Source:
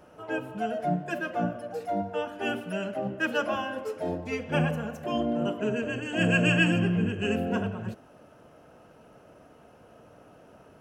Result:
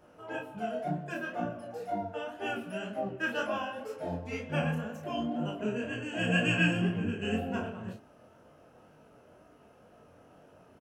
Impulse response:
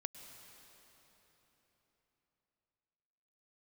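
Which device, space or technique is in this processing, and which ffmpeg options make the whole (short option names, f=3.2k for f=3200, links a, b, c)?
double-tracked vocal: -filter_complex "[0:a]asplit=2[a][b];[b]adelay=33,volume=-5dB[c];[a][c]amix=inputs=2:normalize=0,flanger=delay=19:depth=6:speed=2,volume=-2.5dB"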